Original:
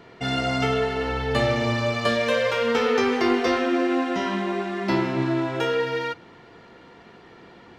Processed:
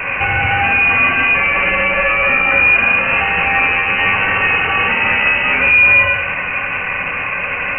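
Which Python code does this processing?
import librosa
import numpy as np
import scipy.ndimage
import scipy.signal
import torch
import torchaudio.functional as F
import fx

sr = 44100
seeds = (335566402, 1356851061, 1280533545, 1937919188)

y = scipy.signal.sosfilt(scipy.signal.butter(2, 330.0, 'highpass', fs=sr, output='sos'), x)
y = fx.over_compress(y, sr, threshold_db=-29.0, ratio=-1.0)
y = fx.fuzz(y, sr, gain_db=45.0, gate_db=-50.0)
y = fx.rev_fdn(y, sr, rt60_s=1.0, lf_ratio=1.4, hf_ratio=0.8, size_ms=39.0, drr_db=2.5)
y = fx.freq_invert(y, sr, carrier_hz=2900)
y = F.gain(torch.from_numpy(y), -1.5).numpy()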